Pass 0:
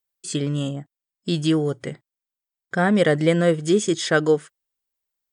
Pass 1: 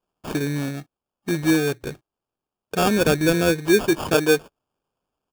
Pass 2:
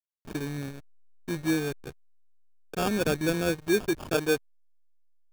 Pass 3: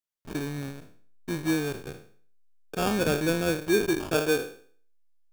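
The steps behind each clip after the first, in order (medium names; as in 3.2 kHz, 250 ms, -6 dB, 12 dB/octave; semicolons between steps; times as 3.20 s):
peaking EQ 3.5 kHz -13.5 dB 0.33 oct; comb 2.7 ms, depth 35%; sample-rate reducer 2 kHz, jitter 0%
hysteresis with a dead band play -25 dBFS; trim -7 dB
spectral sustain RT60 0.48 s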